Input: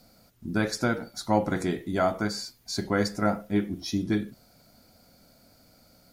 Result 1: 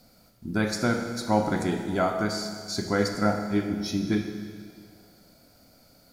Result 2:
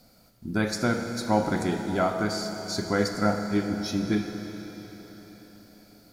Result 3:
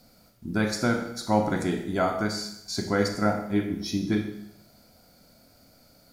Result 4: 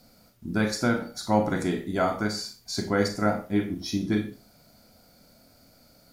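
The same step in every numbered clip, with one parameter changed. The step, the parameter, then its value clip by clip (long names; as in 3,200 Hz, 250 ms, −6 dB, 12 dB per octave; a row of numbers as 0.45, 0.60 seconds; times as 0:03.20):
four-comb reverb, RT60: 2, 4.5, 0.79, 0.31 seconds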